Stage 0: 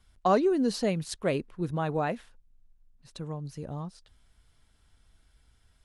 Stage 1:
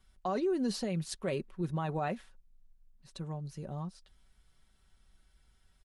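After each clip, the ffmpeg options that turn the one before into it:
ffmpeg -i in.wav -af "aecho=1:1:5.3:0.47,alimiter=limit=-21dB:level=0:latency=1:release=12,volume=-4dB" out.wav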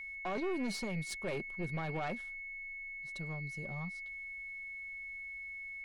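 ffmpeg -i in.wav -af "aeval=exprs='0.0596*(cos(1*acos(clip(val(0)/0.0596,-1,1)))-cos(1*PI/2))+0.0237*(cos(2*acos(clip(val(0)/0.0596,-1,1)))-cos(2*PI/2))':channel_layout=same,aeval=exprs='val(0)+0.01*sin(2*PI*2200*n/s)':channel_layout=same,asoftclip=type=tanh:threshold=-27.5dB,volume=-2dB" out.wav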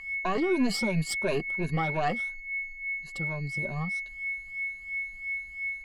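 ffmpeg -i in.wav -af "afftfilt=real='re*pow(10,15/40*sin(2*PI*(1.5*log(max(b,1)*sr/1024/100)/log(2)-(2.9)*(pts-256)/sr)))':imag='im*pow(10,15/40*sin(2*PI*(1.5*log(max(b,1)*sr/1024/100)/log(2)-(2.9)*(pts-256)/sr)))':win_size=1024:overlap=0.75,volume=7dB" out.wav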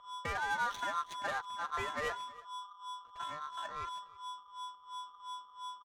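ffmpeg -i in.wav -af "aeval=exprs='val(0)*sin(2*PI*1200*n/s)':channel_layout=same,adynamicsmooth=sensitivity=6:basefreq=810,aecho=1:1:321:0.0794,volume=-6dB" out.wav

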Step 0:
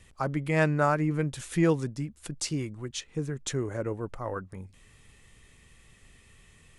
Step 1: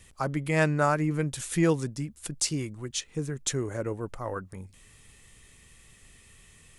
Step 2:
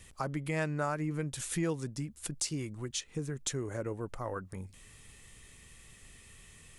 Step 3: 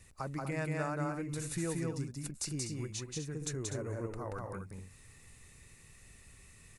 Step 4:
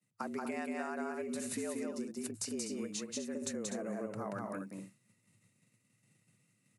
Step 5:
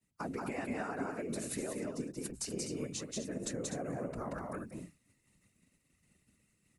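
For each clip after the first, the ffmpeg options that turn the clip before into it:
ffmpeg -i in.wav -af "highshelf=frequency=5300:gain=9" out.wav
ffmpeg -i in.wav -af "acompressor=threshold=-36dB:ratio=2" out.wav
ffmpeg -i in.wav -af "equalizer=frequency=97:width_type=o:width=1.1:gain=3.5,bandreject=frequency=3200:width=5.1,aecho=1:1:180.8|247.8:0.794|0.355,volume=-5dB" out.wav
ffmpeg -i in.wav -af "acompressor=threshold=-37dB:ratio=6,agate=range=-33dB:threshold=-44dB:ratio=3:detection=peak,afreqshift=100,volume=2dB" out.wav
ffmpeg -i in.wav -af "afftfilt=real='hypot(re,im)*cos(2*PI*random(0))':imag='hypot(re,im)*sin(2*PI*random(1))':win_size=512:overlap=0.75,volume=6dB" out.wav

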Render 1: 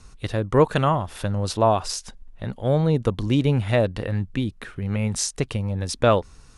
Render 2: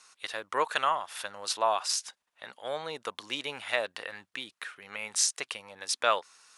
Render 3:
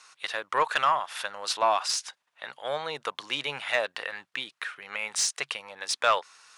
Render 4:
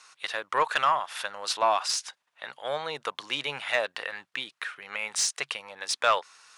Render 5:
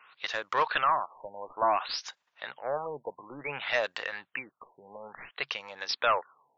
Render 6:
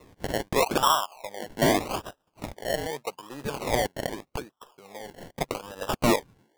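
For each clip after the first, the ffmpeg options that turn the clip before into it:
ffmpeg -i in.wav -af "highpass=1100" out.wav
ffmpeg -i in.wav -filter_complex "[0:a]equalizer=frequency=140:width=4.6:gain=13,asplit=2[link_01][link_02];[link_02]highpass=frequency=720:poles=1,volume=15dB,asoftclip=type=tanh:threshold=-6.5dB[link_03];[link_01][link_03]amix=inputs=2:normalize=0,lowpass=frequency=3800:poles=1,volume=-6dB,volume=-3dB" out.wav
ffmpeg -i in.wav -af anull out.wav
ffmpeg -i in.wav -af "aeval=exprs='(tanh(7.08*val(0)+0.05)-tanh(0.05))/7.08':channel_layout=same,afftfilt=real='re*lt(b*sr/1024,970*pow(7700/970,0.5+0.5*sin(2*PI*0.57*pts/sr)))':imag='im*lt(b*sr/1024,970*pow(7700/970,0.5+0.5*sin(2*PI*0.57*pts/sr)))':win_size=1024:overlap=0.75" out.wav
ffmpeg -i in.wav -af "acrusher=samples=28:mix=1:aa=0.000001:lfo=1:lforange=16.8:lforate=0.82,volume=4dB" out.wav

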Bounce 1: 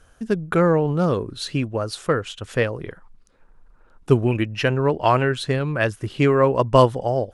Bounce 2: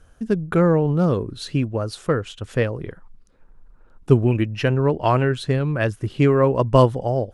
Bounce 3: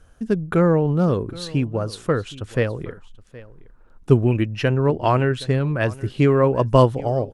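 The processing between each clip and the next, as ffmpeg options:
ffmpeg -i in.wav -af "lowshelf=frequency=440:gain=7,volume=-3.5dB" out.wav
ffmpeg -i in.wav -af "aecho=1:1:770:0.1" out.wav

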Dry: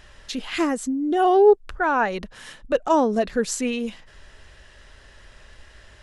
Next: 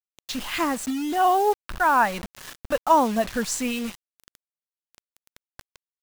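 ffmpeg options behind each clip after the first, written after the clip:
ffmpeg -i in.wav -af "equalizer=frequency=100:width_type=o:width=0.67:gain=7,equalizer=frequency=400:width_type=o:width=0.67:gain=-11,equalizer=frequency=1000:width_type=o:width=0.67:gain=5,acrusher=bits=5:mix=0:aa=0.000001" out.wav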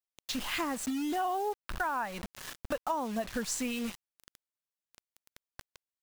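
ffmpeg -i in.wav -af "acompressor=threshold=-27dB:ratio=6,volume=-3dB" out.wav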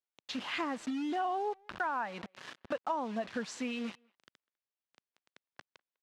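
ffmpeg -i in.wav -filter_complex "[0:a]highpass=170,lowpass=3900,asplit=2[link_01][link_02];[link_02]adelay=200,highpass=300,lowpass=3400,asoftclip=type=hard:threshold=-29.5dB,volume=-28dB[link_03];[link_01][link_03]amix=inputs=2:normalize=0,volume=-1.5dB" out.wav

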